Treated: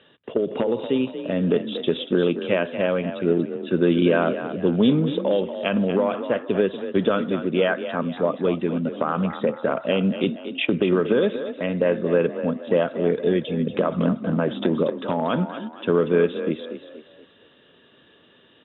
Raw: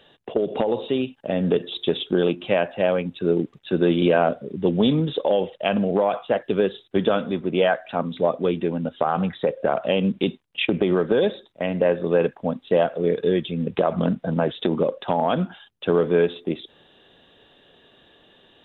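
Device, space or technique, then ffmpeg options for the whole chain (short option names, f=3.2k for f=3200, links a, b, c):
frequency-shifting delay pedal into a guitar cabinet: -filter_complex "[0:a]asplit=5[a][b][c][d][e];[b]adelay=236,afreqshift=35,volume=-10.5dB[f];[c]adelay=472,afreqshift=70,volume=-18.5dB[g];[d]adelay=708,afreqshift=105,volume=-26.4dB[h];[e]adelay=944,afreqshift=140,volume=-34.4dB[i];[a][f][g][h][i]amix=inputs=5:normalize=0,highpass=82,equalizer=f=250:t=q:w=4:g=3,equalizer=f=760:t=q:w=4:g=-9,equalizer=f=1.3k:t=q:w=4:g=3,lowpass=f=3.5k:w=0.5412,lowpass=f=3.5k:w=1.3066"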